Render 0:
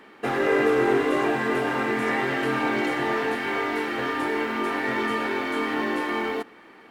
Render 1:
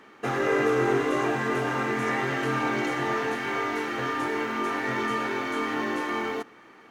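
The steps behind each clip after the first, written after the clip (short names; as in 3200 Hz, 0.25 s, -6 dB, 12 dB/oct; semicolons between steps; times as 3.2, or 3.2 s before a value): thirty-one-band EQ 125 Hz +8 dB, 1250 Hz +4 dB, 6300 Hz +9 dB; gain -3 dB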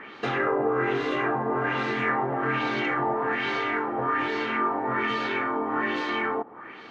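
compressor 2:1, threshold -38 dBFS, peak gain reduction 10 dB; LFO low-pass sine 1.2 Hz 800–4300 Hz; gain +6.5 dB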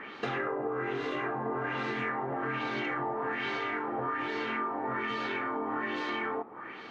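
compressor, threshold -29 dBFS, peak gain reduction 8.5 dB; flange 0.42 Hz, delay 3.7 ms, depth 5.1 ms, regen -89%; gain +3.5 dB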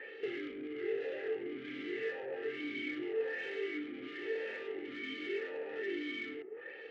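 reverb RT60 0.55 s, pre-delay 5 ms, DRR 17.5 dB; tube stage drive 33 dB, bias 0.5; vowel sweep e-i 0.89 Hz; gain +7.5 dB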